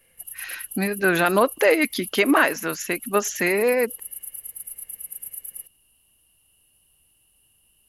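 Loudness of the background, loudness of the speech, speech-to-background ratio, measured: -34.5 LUFS, -21.5 LUFS, 13.0 dB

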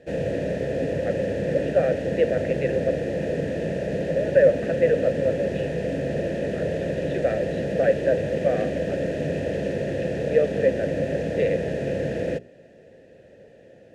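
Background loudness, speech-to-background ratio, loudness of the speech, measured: -27.0 LUFS, 1.5 dB, -25.5 LUFS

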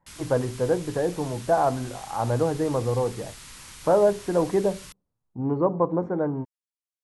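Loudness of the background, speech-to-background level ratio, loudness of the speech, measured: -42.5 LUFS, 17.0 dB, -25.5 LUFS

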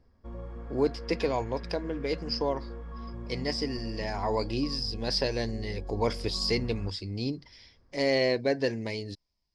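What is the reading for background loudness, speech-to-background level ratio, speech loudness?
-41.5 LUFS, 10.5 dB, -31.0 LUFS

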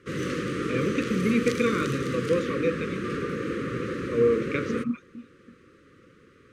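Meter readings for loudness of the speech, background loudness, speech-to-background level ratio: -27.5 LUFS, -30.5 LUFS, 3.0 dB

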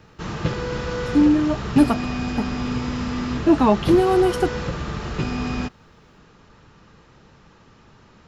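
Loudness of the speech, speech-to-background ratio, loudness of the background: -19.5 LUFS, 7.5 dB, -27.0 LUFS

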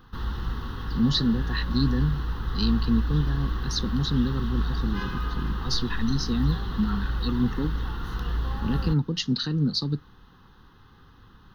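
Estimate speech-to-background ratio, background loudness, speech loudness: 3.5 dB, -31.5 LUFS, -28.0 LUFS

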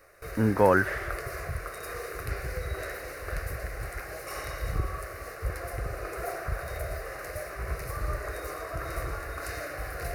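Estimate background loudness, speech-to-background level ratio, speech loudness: -36.0 LUFS, 11.5 dB, -24.5 LUFS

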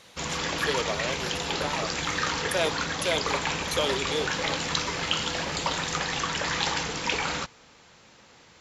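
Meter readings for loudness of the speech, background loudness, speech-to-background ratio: -32.0 LUFS, -28.0 LUFS, -4.0 dB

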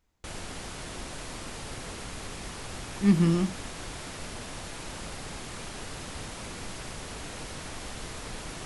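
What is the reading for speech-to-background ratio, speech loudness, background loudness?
14.0 dB, -25.0 LUFS, -39.0 LUFS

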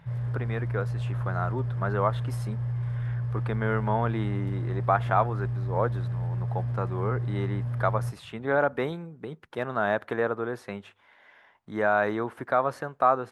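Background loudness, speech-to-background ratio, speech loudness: -31.0 LUFS, 1.5 dB, -29.5 LUFS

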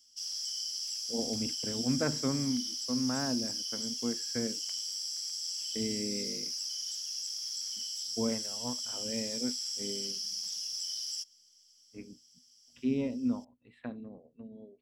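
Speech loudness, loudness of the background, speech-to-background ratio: -36.5 LUFS, -34.5 LUFS, -2.0 dB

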